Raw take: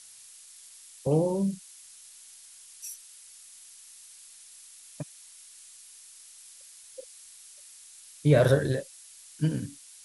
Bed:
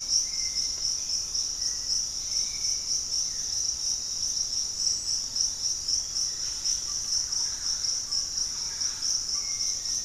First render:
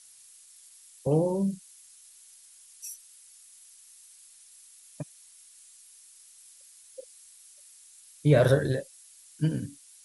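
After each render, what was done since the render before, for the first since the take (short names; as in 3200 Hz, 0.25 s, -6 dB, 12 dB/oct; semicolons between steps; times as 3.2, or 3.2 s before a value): denoiser 6 dB, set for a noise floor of -51 dBFS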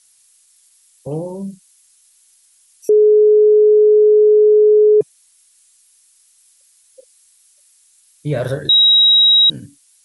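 2.89–5.01 bleep 424 Hz -6.5 dBFS; 8.69–9.5 bleep 3830 Hz -7 dBFS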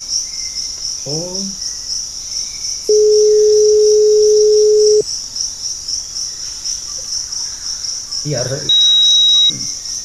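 add bed +6.5 dB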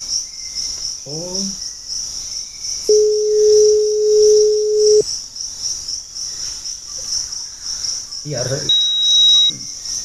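tremolo 1.4 Hz, depth 58%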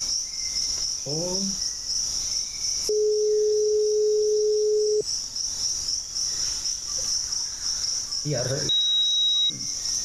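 compressor 2:1, threshold -23 dBFS, peak gain reduction 8.5 dB; limiter -16.5 dBFS, peak gain reduction 7 dB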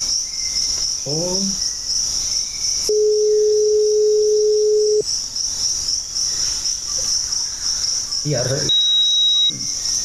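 gain +6.5 dB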